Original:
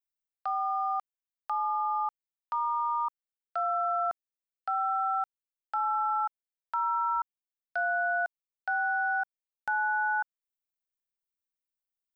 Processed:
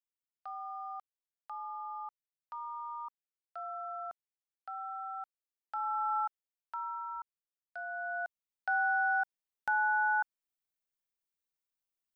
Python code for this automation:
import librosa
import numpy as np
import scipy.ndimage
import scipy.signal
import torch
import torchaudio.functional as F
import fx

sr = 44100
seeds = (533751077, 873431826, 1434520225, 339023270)

y = fx.gain(x, sr, db=fx.line((5.15, -12.0), (6.18, -3.0), (7.06, -12.0), (7.86, -12.0), (8.74, -1.0)))